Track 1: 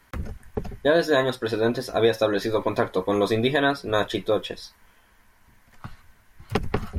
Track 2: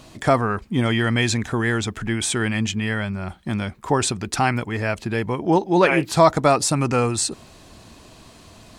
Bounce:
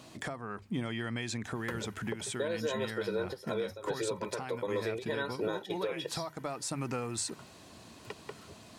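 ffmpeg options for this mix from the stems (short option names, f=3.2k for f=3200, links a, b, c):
-filter_complex "[0:a]highpass=f=140:w=0.5412,highpass=f=140:w=1.3066,aecho=1:1:2.1:0.86,acompressor=threshold=-25dB:ratio=6,adelay=1550,volume=-1dB[a];[1:a]highpass=98,acompressor=threshold=-24dB:ratio=20,bandreject=f=50:t=h:w=6,bandreject=f=100:t=h:w=6,bandreject=f=150:t=h:w=6,volume=-6dB,asplit=2[b][c];[c]apad=whole_len=376346[d];[a][d]sidechaingate=range=-14dB:threshold=-40dB:ratio=16:detection=peak[e];[e][b]amix=inputs=2:normalize=0,alimiter=limit=-23.5dB:level=0:latency=1:release=479"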